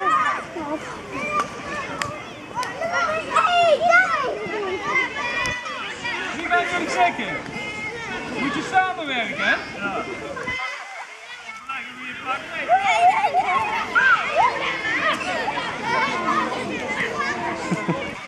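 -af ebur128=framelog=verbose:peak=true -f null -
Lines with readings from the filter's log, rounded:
Integrated loudness:
  I:         -22.0 LUFS
  Threshold: -32.2 LUFS
Loudness range:
  LRA:         5.9 LU
  Threshold: -41.9 LUFS
  LRA low:   -25.3 LUFS
  LRA high:  -19.5 LUFS
True peak:
  Peak:       -3.4 dBFS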